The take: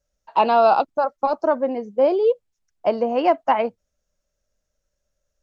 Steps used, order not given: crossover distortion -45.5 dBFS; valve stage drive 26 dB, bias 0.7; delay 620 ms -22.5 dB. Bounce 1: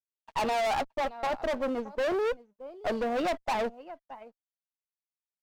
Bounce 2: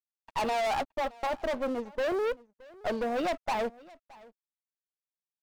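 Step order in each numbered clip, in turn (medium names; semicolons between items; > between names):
crossover distortion > delay > valve stage; valve stage > crossover distortion > delay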